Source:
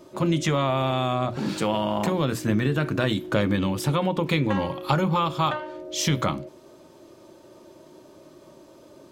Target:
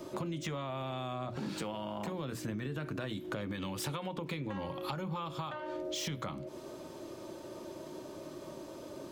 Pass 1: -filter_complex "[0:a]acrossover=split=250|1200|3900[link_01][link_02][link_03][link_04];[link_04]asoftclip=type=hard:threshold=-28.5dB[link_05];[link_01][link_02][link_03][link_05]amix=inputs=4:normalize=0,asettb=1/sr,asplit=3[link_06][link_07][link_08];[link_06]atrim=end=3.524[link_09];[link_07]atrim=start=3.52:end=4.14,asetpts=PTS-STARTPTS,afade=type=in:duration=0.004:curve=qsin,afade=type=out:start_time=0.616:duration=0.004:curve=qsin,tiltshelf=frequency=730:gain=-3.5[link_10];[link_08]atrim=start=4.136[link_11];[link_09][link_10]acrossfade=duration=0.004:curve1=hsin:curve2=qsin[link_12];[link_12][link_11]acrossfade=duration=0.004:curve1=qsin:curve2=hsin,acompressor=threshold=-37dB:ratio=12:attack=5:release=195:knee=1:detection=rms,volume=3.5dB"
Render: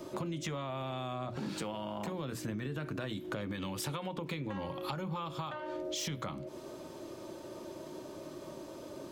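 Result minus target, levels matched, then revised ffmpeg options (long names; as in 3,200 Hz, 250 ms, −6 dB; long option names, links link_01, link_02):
hard clipping: distortion −6 dB
-filter_complex "[0:a]acrossover=split=250|1200|3900[link_01][link_02][link_03][link_04];[link_04]asoftclip=type=hard:threshold=-34.5dB[link_05];[link_01][link_02][link_03][link_05]amix=inputs=4:normalize=0,asettb=1/sr,asplit=3[link_06][link_07][link_08];[link_06]atrim=end=3.524[link_09];[link_07]atrim=start=3.52:end=4.14,asetpts=PTS-STARTPTS,afade=type=in:duration=0.004:curve=qsin,afade=type=out:start_time=0.616:duration=0.004:curve=qsin,tiltshelf=frequency=730:gain=-3.5[link_10];[link_08]atrim=start=4.136[link_11];[link_09][link_10]acrossfade=duration=0.004:curve1=hsin:curve2=qsin[link_12];[link_12][link_11]acrossfade=duration=0.004:curve1=qsin:curve2=hsin,acompressor=threshold=-37dB:ratio=12:attack=5:release=195:knee=1:detection=rms,volume=3.5dB"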